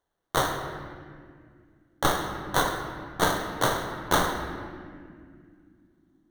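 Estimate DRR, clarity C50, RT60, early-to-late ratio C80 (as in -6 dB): 2.5 dB, 4.5 dB, 2.3 s, 6.0 dB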